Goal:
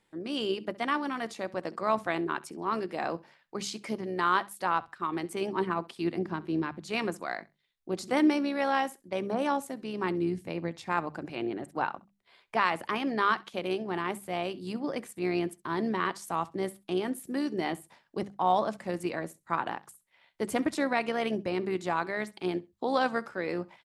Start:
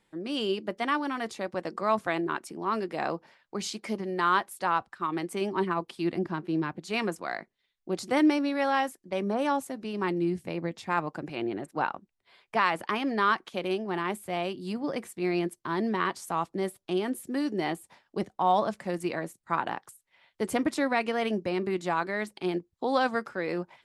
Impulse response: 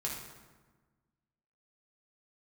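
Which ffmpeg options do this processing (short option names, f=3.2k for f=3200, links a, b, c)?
-af "bandreject=f=50:t=h:w=6,bandreject=f=100:t=h:w=6,bandreject=f=150:t=h:w=6,bandreject=f=200:t=h:w=6,tremolo=f=69:d=0.333,aecho=1:1:66|132:0.0841|0.0151"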